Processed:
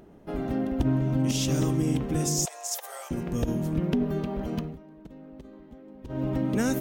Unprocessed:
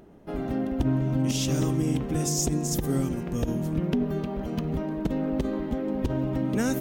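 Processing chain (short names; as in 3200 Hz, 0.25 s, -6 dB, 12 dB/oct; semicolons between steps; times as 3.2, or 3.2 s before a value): 2.45–3.11 steep high-pass 580 Hz 48 dB/oct; 4.55–6.26 dip -18.5 dB, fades 0.22 s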